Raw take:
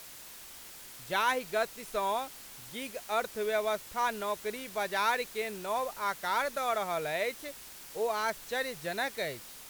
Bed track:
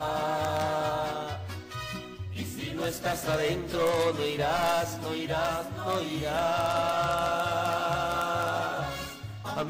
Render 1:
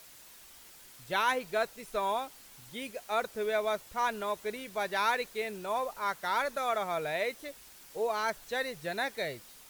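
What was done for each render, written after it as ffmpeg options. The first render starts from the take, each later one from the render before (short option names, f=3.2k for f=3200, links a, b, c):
-af "afftdn=nr=6:nf=-49"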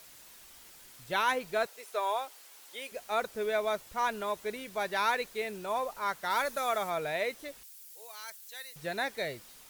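-filter_complex "[0:a]asettb=1/sr,asplit=3[a][b][c];[a]atrim=end=1.664[d];[b]atrim=start=1.66:end=2.92,asetpts=PTS-STARTPTS,afade=t=in:d=0.004:c=qsin,afade=t=out:st=1.256:d=0.004:c=qsin,highpass=f=390:w=0.5412,highpass=f=390:w=1.3066[e];[c]atrim=start=2.916[f];[d][e]acrossfade=d=0.004:c1=hsin:c2=qsin[g];[g][f]acrossfade=d=0.004:c1=qsin:c2=hsin,asettb=1/sr,asplit=3[h][i][j];[h]atrim=end=6.304[k];[i]atrim=start=6.3:end=6.9,asetpts=PTS-STARTPTS,afade=t=in:d=0.004:c=qsin,afade=t=out:st=0.596:d=0.004:c=qsin,highshelf=f=5.5k:g=7[l];[j]atrim=start=6.896[m];[k][l]acrossfade=d=0.004:c1=hsin:c2=qsin[n];[n][m]acrossfade=d=0.004:c1=qsin:c2=hsin,asettb=1/sr,asplit=3[o][p][q];[o]atrim=end=7.634[r];[p]atrim=start=7.63:end=8.76,asetpts=PTS-STARTPTS,afade=t=in:d=0.004:c=qsin,afade=t=out:st=1.126:d=0.004:c=qsin,aderivative[s];[q]atrim=start=8.756[t];[r][s]acrossfade=d=0.004:c1=hsin:c2=qsin[u];[u][t]acrossfade=d=0.004:c1=qsin:c2=hsin"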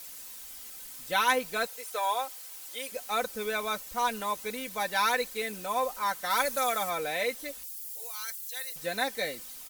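-af "highshelf=f=5.1k:g=9.5,aecho=1:1:3.9:0.72"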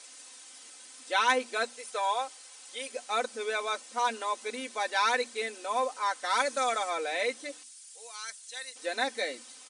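-af "afftfilt=real='re*between(b*sr/4096,220,10000)':imag='im*between(b*sr/4096,220,10000)':win_size=4096:overlap=0.75,bandreject=f=60:t=h:w=6,bandreject=f=120:t=h:w=6,bandreject=f=180:t=h:w=6,bandreject=f=240:t=h:w=6,bandreject=f=300:t=h:w=6"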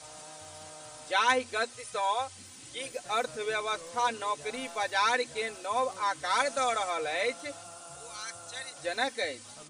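-filter_complex "[1:a]volume=-21dB[a];[0:a][a]amix=inputs=2:normalize=0"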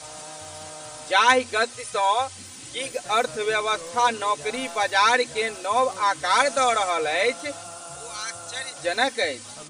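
-af "volume=8dB"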